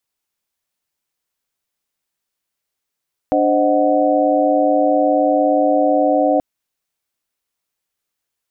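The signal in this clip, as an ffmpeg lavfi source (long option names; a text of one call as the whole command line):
ffmpeg -f lavfi -i "aevalsrc='0.133*(sin(2*PI*293.66*t)+sin(2*PI*523.25*t)+sin(2*PI*622.25*t)+sin(2*PI*739.99*t))':duration=3.08:sample_rate=44100" out.wav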